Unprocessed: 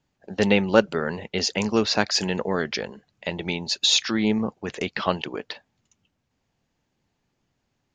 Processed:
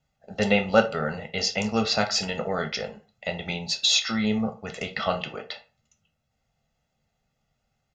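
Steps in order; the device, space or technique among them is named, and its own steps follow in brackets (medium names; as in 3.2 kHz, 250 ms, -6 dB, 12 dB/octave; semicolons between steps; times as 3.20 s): microphone above a desk (comb 1.5 ms, depth 75%; reverberation RT60 0.30 s, pre-delay 7 ms, DRR 4.5 dB); trim -4 dB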